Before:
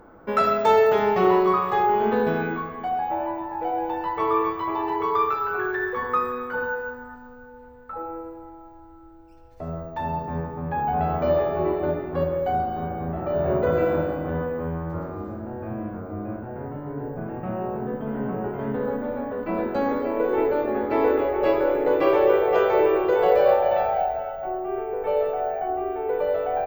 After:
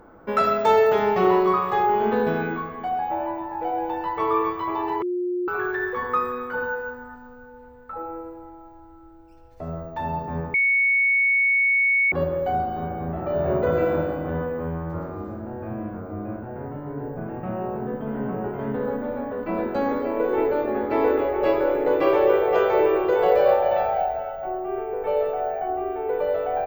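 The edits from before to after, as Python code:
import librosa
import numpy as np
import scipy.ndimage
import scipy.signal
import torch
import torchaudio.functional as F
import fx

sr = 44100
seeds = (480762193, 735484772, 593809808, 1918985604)

y = fx.edit(x, sr, fx.bleep(start_s=5.02, length_s=0.46, hz=357.0, db=-22.5),
    fx.bleep(start_s=10.54, length_s=1.58, hz=2220.0, db=-16.5), tone=tone)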